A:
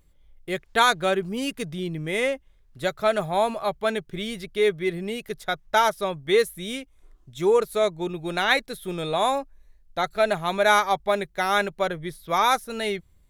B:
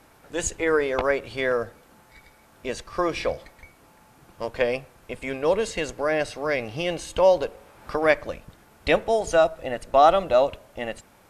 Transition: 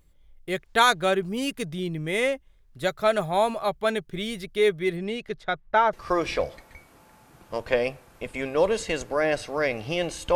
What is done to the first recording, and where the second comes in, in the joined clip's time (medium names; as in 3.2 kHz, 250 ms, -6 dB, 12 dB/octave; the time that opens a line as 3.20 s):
A
4.96–5.93 s: low-pass 7.6 kHz -> 1.6 kHz
5.93 s: go over to B from 2.81 s